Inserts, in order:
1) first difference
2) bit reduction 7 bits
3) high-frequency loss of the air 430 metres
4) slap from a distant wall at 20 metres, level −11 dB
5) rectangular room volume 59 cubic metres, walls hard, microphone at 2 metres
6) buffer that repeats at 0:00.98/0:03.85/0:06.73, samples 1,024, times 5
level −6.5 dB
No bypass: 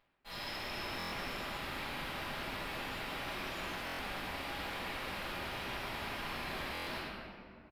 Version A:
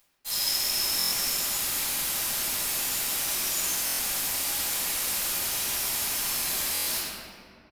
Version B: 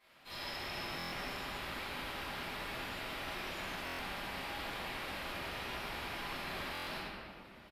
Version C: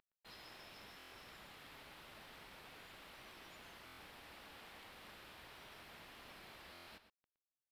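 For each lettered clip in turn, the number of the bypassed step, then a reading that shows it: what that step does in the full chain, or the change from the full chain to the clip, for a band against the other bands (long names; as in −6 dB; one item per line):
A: 3, 8 kHz band +27.5 dB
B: 2, distortion level −12 dB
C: 5, 8 kHz band +5.0 dB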